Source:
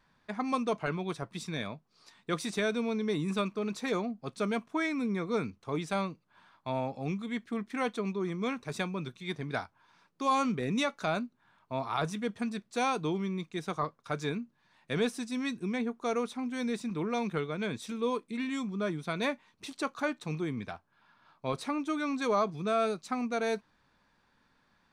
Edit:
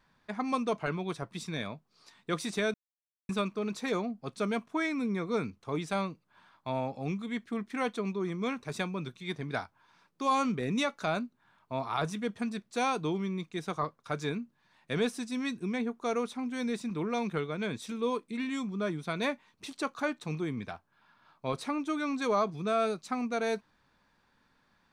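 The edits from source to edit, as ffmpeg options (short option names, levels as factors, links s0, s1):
-filter_complex "[0:a]asplit=3[s0][s1][s2];[s0]atrim=end=2.74,asetpts=PTS-STARTPTS,afade=t=out:st=2.736:d=0.004:c=hsin[s3];[s1]atrim=start=2.74:end=3.29,asetpts=PTS-STARTPTS,volume=0[s4];[s2]atrim=start=3.29,asetpts=PTS-STARTPTS,afade=t=in:d=0.004:c=hsin[s5];[s3][s4][s5]concat=n=3:v=0:a=1"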